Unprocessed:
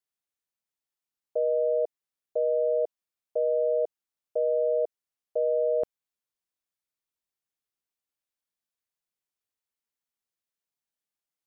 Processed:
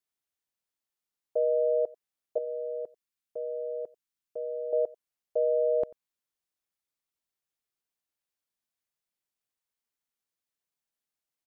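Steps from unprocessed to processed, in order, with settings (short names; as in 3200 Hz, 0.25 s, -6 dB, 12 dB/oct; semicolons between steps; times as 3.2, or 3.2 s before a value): 2.38–4.73 bell 630 Hz -10.5 dB 1.4 oct; echo 91 ms -23 dB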